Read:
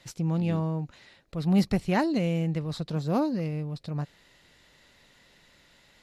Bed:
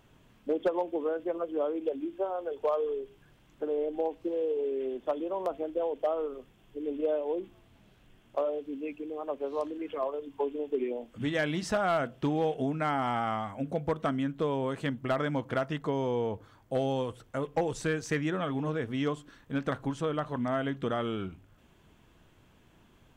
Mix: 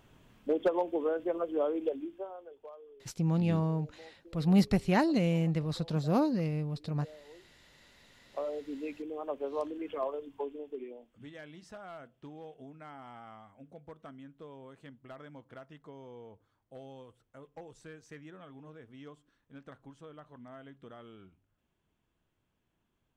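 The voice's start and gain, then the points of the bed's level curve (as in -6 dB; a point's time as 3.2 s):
3.00 s, -1.5 dB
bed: 1.85 s 0 dB
2.79 s -22.5 dB
7.5 s -22.5 dB
8.66 s -2 dB
10.12 s -2 dB
11.4 s -19 dB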